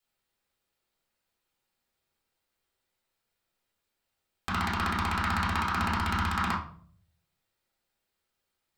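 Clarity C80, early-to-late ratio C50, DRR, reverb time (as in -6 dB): 11.0 dB, 6.0 dB, -6.5 dB, 0.55 s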